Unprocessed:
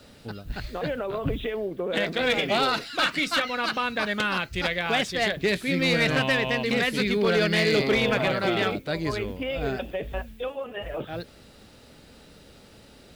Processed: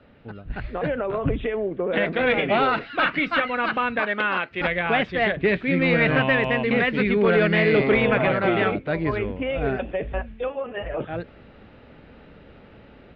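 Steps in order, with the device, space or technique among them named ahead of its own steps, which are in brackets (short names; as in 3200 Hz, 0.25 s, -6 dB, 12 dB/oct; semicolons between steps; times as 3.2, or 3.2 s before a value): 3.99–4.61 HPF 290 Hz 12 dB/oct; action camera in a waterproof case (LPF 2600 Hz 24 dB/oct; AGC gain up to 6 dB; gain -2 dB; AAC 128 kbps 48000 Hz)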